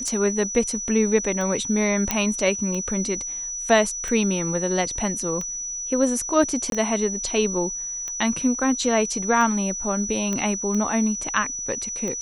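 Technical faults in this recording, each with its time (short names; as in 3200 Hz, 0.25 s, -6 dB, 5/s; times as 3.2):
tick 45 rpm -18 dBFS
tone 5900 Hz -28 dBFS
2.11 pop -5 dBFS
6.7–6.72 gap 22 ms
10.33 pop -14 dBFS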